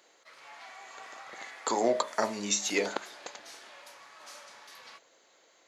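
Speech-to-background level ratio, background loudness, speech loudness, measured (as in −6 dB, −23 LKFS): 18.0 dB, −48.0 LKFS, −30.0 LKFS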